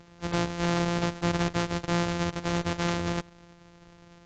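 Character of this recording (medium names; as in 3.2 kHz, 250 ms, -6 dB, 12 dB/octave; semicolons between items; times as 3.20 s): a buzz of ramps at a fixed pitch in blocks of 256 samples; AAC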